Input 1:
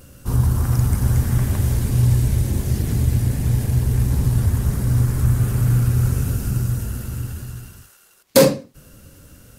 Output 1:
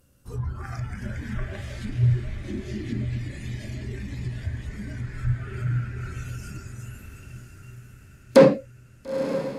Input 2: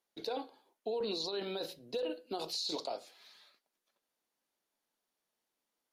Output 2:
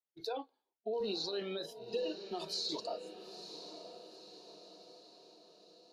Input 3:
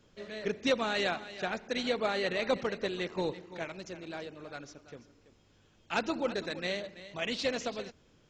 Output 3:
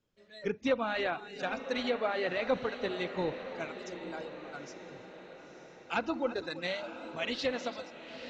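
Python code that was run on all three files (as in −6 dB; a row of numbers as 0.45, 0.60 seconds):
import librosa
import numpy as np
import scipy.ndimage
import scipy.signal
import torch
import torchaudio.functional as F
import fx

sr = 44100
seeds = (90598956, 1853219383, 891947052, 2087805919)

y = fx.noise_reduce_blind(x, sr, reduce_db=17)
y = fx.env_lowpass_down(y, sr, base_hz=2100.0, full_db=-26.5)
y = fx.echo_diffused(y, sr, ms=935, feedback_pct=53, wet_db=-10.5)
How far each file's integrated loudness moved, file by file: −7.5, −1.5, −1.0 LU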